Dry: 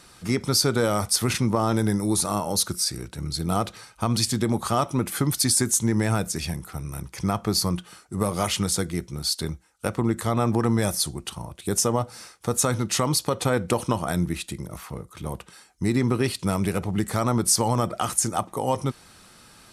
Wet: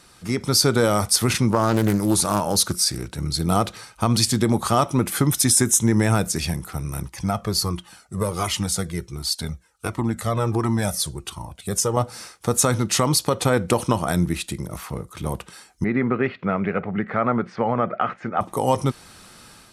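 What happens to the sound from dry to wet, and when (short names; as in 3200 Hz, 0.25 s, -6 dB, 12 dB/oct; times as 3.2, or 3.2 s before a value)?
1.5–3.15 Doppler distortion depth 0.3 ms
5.24–6.13 Butterworth band-stop 4500 Hz, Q 6.1
7.09–11.97 cascading flanger falling 1.4 Hz
15.84–18.41 speaker cabinet 200–2200 Hz, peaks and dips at 320 Hz -8 dB, 950 Hz -7 dB, 1400 Hz +3 dB, 2100 Hz +3 dB
whole clip: AGC gain up to 6 dB; gain -1 dB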